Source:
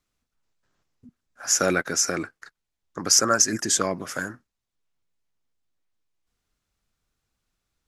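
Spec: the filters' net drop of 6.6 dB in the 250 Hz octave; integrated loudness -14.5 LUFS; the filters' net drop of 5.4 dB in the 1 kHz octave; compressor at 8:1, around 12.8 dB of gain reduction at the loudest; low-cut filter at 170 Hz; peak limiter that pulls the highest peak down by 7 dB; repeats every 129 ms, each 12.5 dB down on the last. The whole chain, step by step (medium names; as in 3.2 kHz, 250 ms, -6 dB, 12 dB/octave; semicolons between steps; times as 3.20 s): high-pass 170 Hz; peaking EQ 250 Hz -7.5 dB; peaking EQ 1 kHz -8.5 dB; compression 8:1, threshold -28 dBFS; peak limiter -22.5 dBFS; feedback delay 129 ms, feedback 24%, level -12.5 dB; trim +20.5 dB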